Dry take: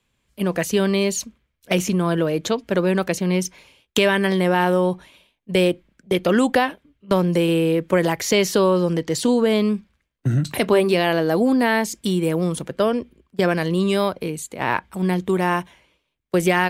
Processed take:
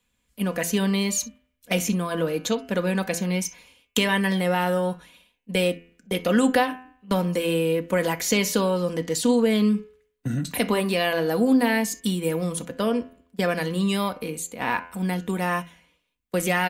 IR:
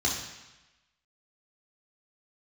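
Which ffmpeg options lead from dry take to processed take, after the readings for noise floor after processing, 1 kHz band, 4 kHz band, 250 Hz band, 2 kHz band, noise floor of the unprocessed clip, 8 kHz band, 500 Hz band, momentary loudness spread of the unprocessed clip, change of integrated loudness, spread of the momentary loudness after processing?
−73 dBFS, −4.0 dB, −2.0 dB, −3.0 dB, −3.0 dB, −73 dBFS, +0.5 dB, −5.0 dB, 8 LU, −3.5 dB, 9 LU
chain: -filter_complex "[0:a]highshelf=frequency=7500:gain=7,aecho=1:1:4.1:0.48,bandreject=frequency=85.12:width_type=h:width=4,bandreject=frequency=170.24:width_type=h:width=4,bandreject=frequency=255.36:width_type=h:width=4,bandreject=frequency=340.48:width_type=h:width=4,bandreject=frequency=425.6:width_type=h:width=4,bandreject=frequency=510.72:width_type=h:width=4,bandreject=frequency=595.84:width_type=h:width=4,bandreject=frequency=680.96:width_type=h:width=4,bandreject=frequency=766.08:width_type=h:width=4,bandreject=frequency=851.2:width_type=h:width=4,bandreject=frequency=936.32:width_type=h:width=4,bandreject=frequency=1021.44:width_type=h:width=4,bandreject=frequency=1106.56:width_type=h:width=4,bandreject=frequency=1191.68:width_type=h:width=4,bandreject=frequency=1276.8:width_type=h:width=4,bandreject=frequency=1361.92:width_type=h:width=4,bandreject=frequency=1447.04:width_type=h:width=4,bandreject=frequency=1532.16:width_type=h:width=4,bandreject=frequency=1617.28:width_type=h:width=4,bandreject=frequency=1702.4:width_type=h:width=4,bandreject=frequency=1787.52:width_type=h:width=4,bandreject=frequency=1872.64:width_type=h:width=4,bandreject=frequency=1957.76:width_type=h:width=4,bandreject=frequency=2042.88:width_type=h:width=4,bandreject=frequency=2128:width_type=h:width=4,bandreject=frequency=2213.12:width_type=h:width=4,bandreject=frequency=2298.24:width_type=h:width=4,bandreject=frequency=2383.36:width_type=h:width=4,bandreject=frequency=2468.48:width_type=h:width=4,bandreject=frequency=2553.6:width_type=h:width=4,bandreject=frequency=2638.72:width_type=h:width=4,bandreject=frequency=2723.84:width_type=h:width=4,bandreject=frequency=2808.96:width_type=h:width=4,bandreject=frequency=2894.08:width_type=h:width=4,bandreject=frequency=2979.2:width_type=h:width=4,bandreject=frequency=3064.32:width_type=h:width=4,asplit=2[link_01][link_02];[1:a]atrim=start_sample=2205,atrim=end_sample=3087[link_03];[link_02][link_03]afir=irnorm=-1:irlink=0,volume=-23.5dB[link_04];[link_01][link_04]amix=inputs=2:normalize=0,volume=-4dB"

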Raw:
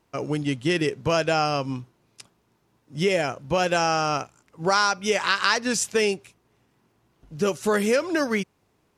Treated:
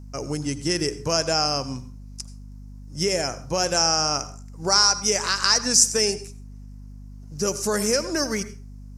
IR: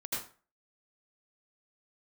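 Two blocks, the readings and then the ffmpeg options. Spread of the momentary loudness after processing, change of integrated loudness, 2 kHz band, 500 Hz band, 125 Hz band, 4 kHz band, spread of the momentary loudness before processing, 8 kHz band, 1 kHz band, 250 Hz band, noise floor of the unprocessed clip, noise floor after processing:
21 LU, +2.5 dB, −4.0 dB, −2.0 dB, −1.0 dB, +7.5 dB, 8 LU, +11.5 dB, −2.5 dB, −2.0 dB, −68 dBFS, −40 dBFS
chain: -filter_complex "[0:a]highshelf=frequency=4300:width_type=q:width=3:gain=8.5,asplit=2[link_01][link_02];[1:a]atrim=start_sample=2205[link_03];[link_02][link_03]afir=irnorm=-1:irlink=0,volume=-16dB[link_04];[link_01][link_04]amix=inputs=2:normalize=0,aeval=exprs='val(0)+0.0158*(sin(2*PI*50*n/s)+sin(2*PI*2*50*n/s)/2+sin(2*PI*3*50*n/s)/3+sin(2*PI*4*50*n/s)/4+sin(2*PI*5*50*n/s)/5)':channel_layout=same,volume=-3dB"

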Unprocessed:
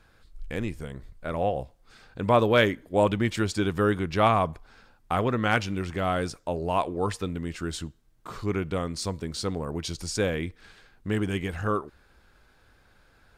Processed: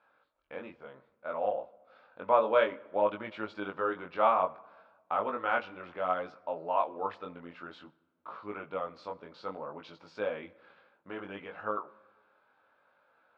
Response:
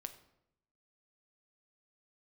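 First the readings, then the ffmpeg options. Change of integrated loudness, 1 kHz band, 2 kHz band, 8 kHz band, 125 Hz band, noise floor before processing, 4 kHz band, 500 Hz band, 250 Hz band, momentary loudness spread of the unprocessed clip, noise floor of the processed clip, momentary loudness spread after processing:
−5.5 dB, −3.0 dB, −7.5 dB, below −35 dB, −25.5 dB, −61 dBFS, −14.5 dB, −5.0 dB, −15.5 dB, 14 LU, −73 dBFS, 20 LU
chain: -filter_complex "[0:a]flanger=delay=18.5:depth=4.5:speed=0.6,highpass=370,equalizer=frequency=380:width_type=q:width=4:gain=-6,equalizer=frequency=570:width_type=q:width=4:gain=7,equalizer=frequency=920:width_type=q:width=4:gain=6,equalizer=frequency=1300:width_type=q:width=4:gain=6,equalizer=frequency=1900:width_type=q:width=4:gain=-6,equalizer=frequency=3000:width_type=q:width=4:gain=-3,lowpass=frequency=3100:width=0.5412,lowpass=frequency=3100:width=1.3066,asplit=2[link_01][link_02];[1:a]atrim=start_sample=2205,asetrate=22050,aresample=44100[link_03];[link_02][link_03]afir=irnorm=-1:irlink=0,volume=-10.5dB[link_04];[link_01][link_04]amix=inputs=2:normalize=0,volume=-6.5dB"

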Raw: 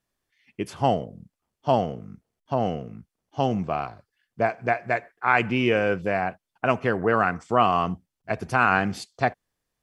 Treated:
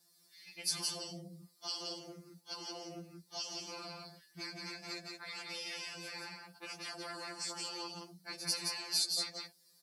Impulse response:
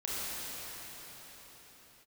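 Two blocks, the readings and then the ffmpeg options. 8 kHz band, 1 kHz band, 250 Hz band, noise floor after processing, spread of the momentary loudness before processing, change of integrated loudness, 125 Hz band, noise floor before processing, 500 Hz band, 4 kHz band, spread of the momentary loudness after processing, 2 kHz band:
can't be measured, −26.0 dB, −22.0 dB, −69 dBFS, 14 LU, −15.0 dB, −24.0 dB, −84 dBFS, −25.5 dB, +2.0 dB, 15 LU, −20.0 dB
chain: -filter_complex "[0:a]tremolo=f=120:d=0.462,acrossover=split=190|3000[link_01][link_02][link_03];[link_02]acompressor=threshold=-42dB:ratio=2.5[link_04];[link_01][link_04][link_03]amix=inputs=3:normalize=0,aecho=1:1:5.8:0.86,afftfilt=real='re*lt(hypot(re,im),0.0631)':imag='im*lt(hypot(re,im),0.0631)':win_size=1024:overlap=0.75,acompressor=threshold=-47dB:ratio=4,highpass=93,equalizer=frequency=230:width=0.65:gain=3.5,aexciter=amount=13.3:drive=8.1:freq=4800,highshelf=frequency=5300:width_type=q:width=3:gain=-8.5,aecho=1:1:171:0.668,afftfilt=real='re*2.83*eq(mod(b,8),0)':imag='im*2.83*eq(mod(b,8),0)':win_size=2048:overlap=0.75,volume=1dB"

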